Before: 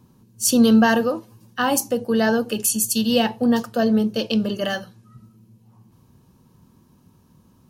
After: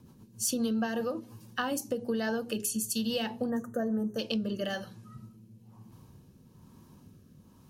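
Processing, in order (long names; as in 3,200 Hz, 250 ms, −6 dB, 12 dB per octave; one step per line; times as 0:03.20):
mains-hum notches 60/120/180/240/300/360/420 Hz
rotating-speaker cabinet horn 7.5 Hz, later 1.1 Hz, at 0:00.47
downward compressor 5 to 1, threshold −31 dBFS, peak gain reduction 16.5 dB
gain on a spectral selection 0:03.50–0:04.19, 2,000–5,800 Hz −24 dB
level +1.5 dB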